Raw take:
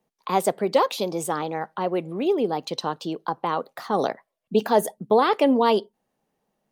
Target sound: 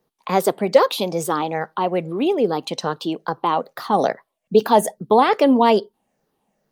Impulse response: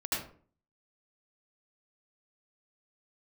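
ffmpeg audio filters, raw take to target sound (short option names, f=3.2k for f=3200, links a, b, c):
-af "afftfilt=real='re*pow(10,7/40*sin(2*PI*(0.58*log(max(b,1)*sr/1024/100)/log(2)-(-2.4)*(pts-256)/sr)))':imag='im*pow(10,7/40*sin(2*PI*(0.58*log(max(b,1)*sr/1024/100)/log(2)-(-2.4)*(pts-256)/sr)))':win_size=1024:overlap=0.75,volume=4dB"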